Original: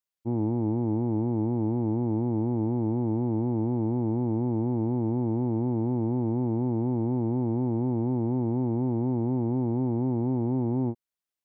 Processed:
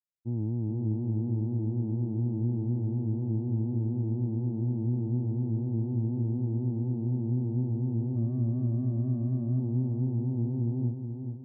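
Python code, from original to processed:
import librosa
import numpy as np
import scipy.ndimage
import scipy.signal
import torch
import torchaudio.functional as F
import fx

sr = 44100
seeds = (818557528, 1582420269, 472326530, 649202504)

y = fx.lower_of_two(x, sr, delay_ms=0.51, at=(8.16, 9.6))
y = fx.bandpass_q(y, sr, hz=120.0, q=1.2)
y = fx.echo_feedback(y, sr, ms=429, feedback_pct=45, wet_db=-7)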